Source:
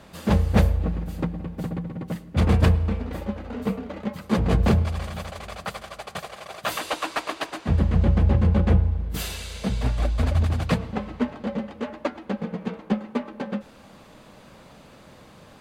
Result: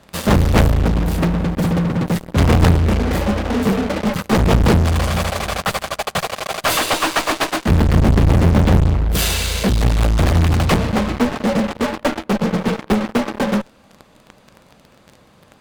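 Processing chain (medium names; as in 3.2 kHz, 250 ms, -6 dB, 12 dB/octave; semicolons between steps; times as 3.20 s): de-hum 305.5 Hz, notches 3; Chebyshev shaper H 3 -21 dB, 4 -9 dB, 5 -36 dB, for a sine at -6 dBFS; in parallel at -3 dB: fuzz box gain 40 dB, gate -41 dBFS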